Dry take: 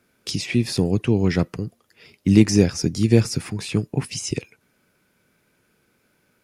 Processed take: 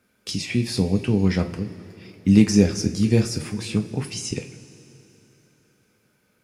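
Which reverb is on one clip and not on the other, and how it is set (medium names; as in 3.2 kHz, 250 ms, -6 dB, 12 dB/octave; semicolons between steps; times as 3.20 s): two-slope reverb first 0.29 s, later 3.4 s, from -19 dB, DRR 4.5 dB; trim -3 dB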